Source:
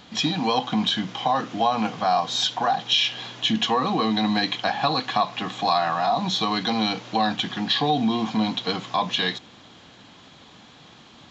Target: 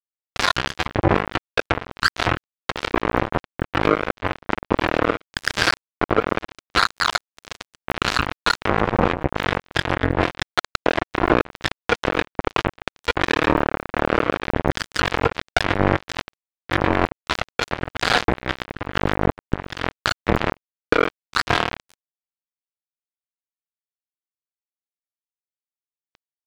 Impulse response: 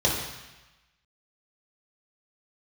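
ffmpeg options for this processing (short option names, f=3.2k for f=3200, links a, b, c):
-filter_complex "[0:a]highshelf=f=4k:g=-9.5,acrossover=split=5800[a][b];[b]acompressor=threshold=-49dB:ratio=4:attack=1:release=60[c];[a][c]amix=inputs=2:normalize=0,asetrate=18846,aresample=44100,aeval=exprs='val(0)+0.00631*(sin(2*PI*60*n/s)+sin(2*PI*2*60*n/s)/2+sin(2*PI*3*60*n/s)/3+sin(2*PI*4*60*n/s)/4+sin(2*PI*5*60*n/s)/5)':c=same,aphaser=in_gain=1:out_gain=1:delay=2.1:decay=0.69:speed=0.88:type=sinusoidal,bass=f=250:g=-5,treble=f=4k:g=-5,acompressor=threshold=-29dB:ratio=10,highpass=f=64:p=1,aecho=1:1:144|288:0.178|0.0338,acrusher=bits=3:mix=0:aa=0.5,alimiter=level_in=27.5dB:limit=-1dB:release=50:level=0:latency=1,volume=-1dB"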